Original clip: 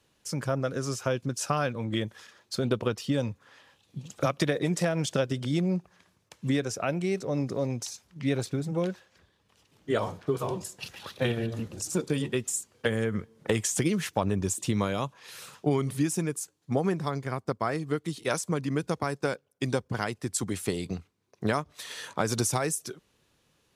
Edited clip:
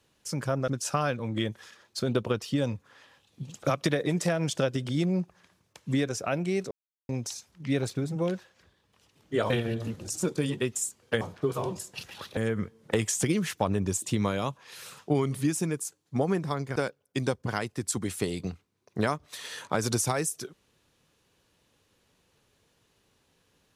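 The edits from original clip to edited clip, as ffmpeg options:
-filter_complex "[0:a]asplit=8[a][b][c][d][e][f][g][h];[a]atrim=end=0.682[i];[b]atrim=start=1.238:end=7.27,asetpts=PTS-STARTPTS,afade=t=out:st=6.028:d=0.004:c=hsin[j];[c]atrim=start=7.27:end=7.65,asetpts=PTS-STARTPTS,volume=0[k];[d]atrim=start=7.65:end=10.062,asetpts=PTS-STARTPTS,afade=t=in:d=0.004:c=hsin[l];[e]atrim=start=11.218:end=12.932[m];[f]atrim=start=10.058:end=11.222[n];[g]atrim=start=12.928:end=17.322[o];[h]atrim=start=19.218[p];[j][k][l]concat=n=3:v=0:a=1[q];[i][q]acrossfade=d=0.004:c1=hsin:c2=hsin[r];[r][m]acrossfade=d=0.004:c1=hsin:c2=hsin[s];[s][n]acrossfade=d=0.004:c1=hsin:c2=hsin[t];[t][o]acrossfade=d=0.004:c1=hsin:c2=hsin[u];[u][p]acrossfade=d=0.004:c1=hsin:c2=hsin"

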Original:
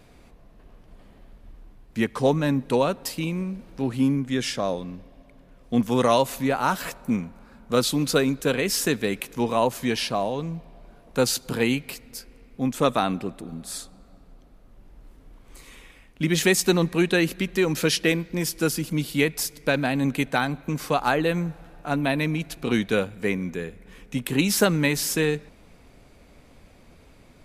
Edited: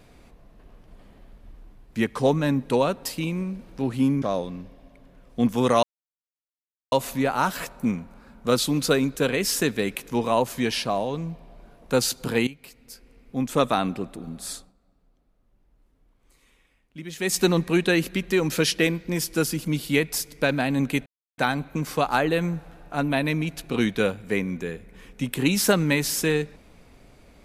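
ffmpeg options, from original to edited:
-filter_complex "[0:a]asplit=7[a][b][c][d][e][f][g];[a]atrim=end=4.222[h];[b]atrim=start=4.558:end=6.17,asetpts=PTS-STARTPTS,afade=t=out:st=1.608:d=0.004:c=hsin,apad=pad_dur=1.09[i];[c]atrim=start=6.17:end=11.72,asetpts=PTS-STARTPTS,afade=t=in:d=0.004:c=hsin,afade=t=out:st=5.546:d=0.004:c=hsin:silence=0.158489[j];[d]atrim=start=11.72:end=13.98,asetpts=PTS-STARTPTS,afade=t=in:d=1.1:silence=0.158489,afade=t=out:st=2.08:d=0.18:silence=0.188365[k];[e]atrim=start=13.98:end=16.44,asetpts=PTS-STARTPTS,volume=-14.5dB[l];[f]atrim=start=16.44:end=20.31,asetpts=PTS-STARTPTS,afade=t=in:d=0.18:silence=0.188365,afade=t=out:st=3.866:d=0.004:c=hsin,apad=pad_dur=0.32[m];[g]atrim=start=20.31,asetpts=PTS-STARTPTS,afade=t=in:d=0.004:c=hsin[n];[i][j][k][l][m][n]concat=n=6:v=0:a=1[o];[h][o]acrossfade=d=0.004:c1=hsin:c2=hsin"

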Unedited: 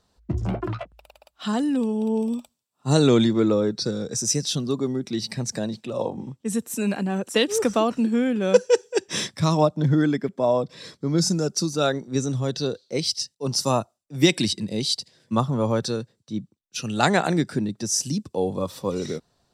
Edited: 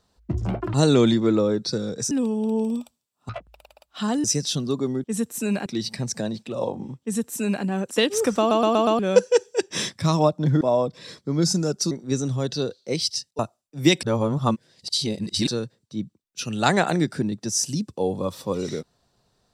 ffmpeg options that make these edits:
-filter_complex "[0:a]asplit=17[a][b][c][d][e][f][g][h][i][j][k][l][m][n][o][p][q];[a]atrim=end=0.742[r];[b]atrim=start=2.868:end=4.242[s];[c]atrim=start=1.688:end=2.872[t];[d]atrim=start=0.738:end=1.692[u];[e]atrim=start=4.238:end=5.042[v];[f]atrim=start=6.398:end=7.022[w];[g]atrim=start=5.038:end=7.892[x];[h]atrim=start=7.768:end=7.892[y];[i]atrim=start=7.768:end=7.892[z];[j]atrim=start=7.768:end=7.892[aa];[k]atrim=start=7.768:end=7.892[ab];[l]atrim=start=8.368:end=9.992[ac];[m]atrim=start=10.368:end=11.672[ad];[n]atrim=start=11.948:end=13.432[ae];[o]atrim=start=13.758:end=14.402[af];[p]atrim=start=14.398:end=15.842,asetpts=PTS-STARTPTS,areverse[ag];[q]atrim=start=15.838[ah];[r][s]acrossfade=d=0.004:c1=hsin:c2=hsin[ai];[ai][t]acrossfade=d=0.004:c1=hsin:c2=hsin[aj];[aj][u]acrossfade=d=0.004:c1=hsin:c2=hsin[ak];[ak][v]acrossfade=d=0.004:c1=hsin:c2=hsin[al];[al][w]acrossfade=d=0.004:c1=hsin:c2=hsin[am];[am][x]acrossfade=d=0.004:c1=hsin:c2=hsin[an];[an][y]acrossfade=d=0.004:c1=hsin:c2=hsin[ao];[ao][z]acrossfade=d=0.004:c1=hsin:c2=hsin[ap];[ap][aa]acrossfade=d=0.004:c1=hsin:c2=hsin[aq];[aq][ab]acrossfade=d=0.004:c1=hsin:c2=hsin[ar];[ar][ac]acrossfade=d=0.004:c1=hsin:c2=hsin[as];[as][ad]acrossfade=d=0.004:c1=hsin:c2=hsin[at];[at][ae]acrossfade=d=0.004:c1=hsin:c2=hsin[au];[au][af]acrossfade=d=0.004:c1=hsin:c2=hsin[av];[av][ag]acrossfade=d=0.004:c1=hsin:c2=hsin[aw];[aw][ah]acrossfade=d=0.004:c1=hsin:c2=hsin"

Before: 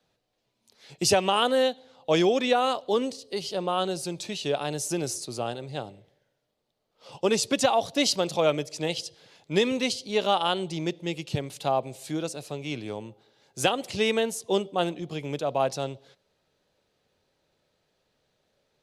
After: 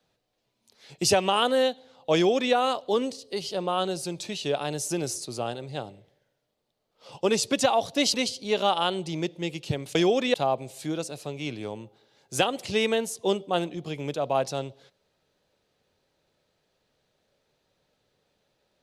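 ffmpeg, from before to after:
-filter_complex "[0:a]asplit=4[a][b][c][d];[a]atrim=end=8.142[e];[b]atrim=start=9.778:end=11.592[f];[c]atrim=start=2.138:end=2.532[g];[d]atrim=start=11.588[h];[e][f]acrossfade=d=0.004:c1=hsin:c2=hsin[i];[i][g]acrossfade=d=0.004:c1=hsin:c2=hsin[j];[j][h]acrossfade=d=0.004:c1=hsin:c2=hsin"

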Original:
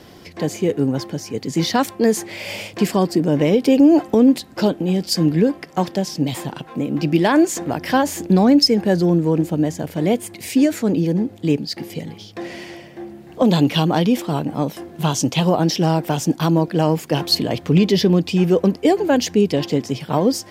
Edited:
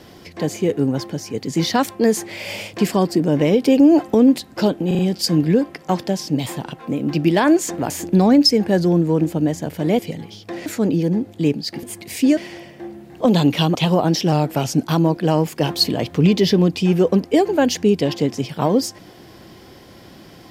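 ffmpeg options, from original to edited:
-filter_complex "[0:a]asplit=12[a][b][c][d][e][f][g][h][i][j][k][l];[a]atrim=end=4.912[m];[b]atrim=start=4.868:end=4.912[n];[c]atrim=start=4.868:end=4.912[o];[d]atrim=start=4.868:end=7.782[p];[e]atrim=start=8.068:end=10.162[q];[f]atrim=start=11.868:end=12.542[r];[g]atrim=start=10.698:end=11.872[s];[h]atrim=start=10.158:end=10.702[t];[i]atrim=start=12.538:end=13.922[u];[j]atrim=start=15.298:end=15.874[v];[k]atrim=start=15.87:end=16.35,asetpts=PTS-STARTPTS,asetrate=41013,aresample=44100,atrim=end_sample=22761,asetpts=PTS-STARTPTS[w];[l]atrim=start=16.346[x];[m][n]acrossfade=d=0.004:c1=hsin:c2=hsin[y];[y][o]acrossfade=d=0.004:c1=hsin:c2=hsin[z];[z][p]acrossfade=d=0.004:c1=hsin:c2=hsin[aa];[aa][q]acrossfade=d=0.004:c1=hsin:c2=hsin[ab];[ab][r]acrossfade=d=0.004:c1=hsin:c2=hsin[ac];[ac][s]acrossfade=d=0.004:c1=hsin:c2=hsin[ad];[ad][t]acrossfade=d=0.004:c1=hsin:c2=hsin[ae];[ae][u]acrossfade=d=0.004:c1=hsin:c2=hsin[af];[af][v]acrossfade=d=0.004:c1=hsin:c2=hsin[ag];[ag][w]acrossfade=d=0.004:c1=hsin:c2=hsin[ah];[ah][x]acrossfade=d=0.004:c1=hsin:c2=hsin"

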